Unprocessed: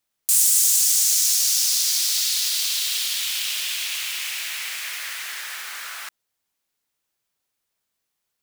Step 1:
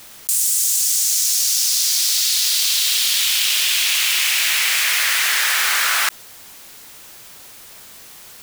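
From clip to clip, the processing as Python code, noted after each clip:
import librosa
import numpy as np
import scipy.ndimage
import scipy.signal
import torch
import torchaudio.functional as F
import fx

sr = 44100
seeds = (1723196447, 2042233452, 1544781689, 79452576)

y = fx.env_flatten(x, sr, amount_pct=100)
y = F.gain(torch.from_numpy(y), -2.0).numpy()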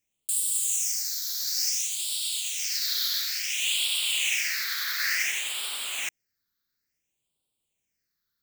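y = fx.phaser_stages(x, sr, stages=6, low_hz=710.0, high_hz=1700.0, hz=0.57, feedback_pct=40)
y = fx.upward_expand(y, sr, threshold_db=-40.0, expansion=2.5)
y = F.gain(torch.from_numpy(y), -5.5).numpy()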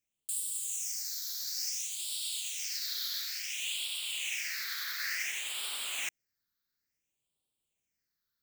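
y = fx.rider(x, sr, range_db=10, speed_s=0.5)
y = F.gain(torch.from_numpy(y), -8.0).numpy()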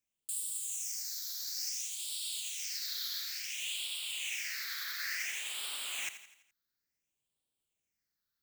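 y = fx.echo_feedback(x, sr, ms=84, feedback_pct=50, wet_db=-12)
y = F.gain(torch.from_numpy(y), -2.5).numpy()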